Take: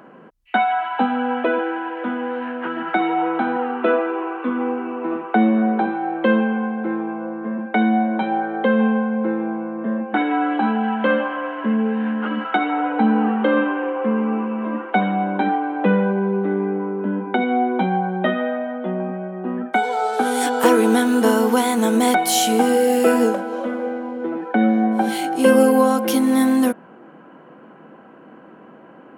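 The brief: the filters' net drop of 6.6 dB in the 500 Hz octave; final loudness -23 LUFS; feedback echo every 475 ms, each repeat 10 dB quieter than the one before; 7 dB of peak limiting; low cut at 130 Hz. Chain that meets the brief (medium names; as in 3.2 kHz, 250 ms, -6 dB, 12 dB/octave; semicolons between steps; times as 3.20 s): high-pass 130 Hz; peaking EQ 500 Hz -7.5 dB; peak limiter -13 dBFS; feedback delay 475 ms, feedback 32%, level -10 dB; trim +0.5 dB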